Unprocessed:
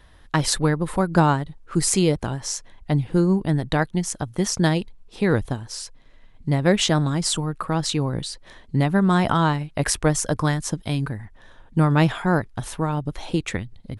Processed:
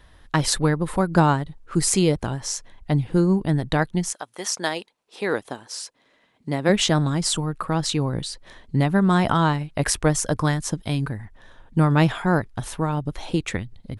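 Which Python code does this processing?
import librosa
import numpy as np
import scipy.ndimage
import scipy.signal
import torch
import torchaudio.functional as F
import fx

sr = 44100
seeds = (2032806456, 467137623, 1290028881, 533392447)

y = fx.highpass(x, sr, hz=fx.line((4.11, 700.0), (6.68, 200.0)), slope=12, at=(4.11, 6.68), fade=0.02)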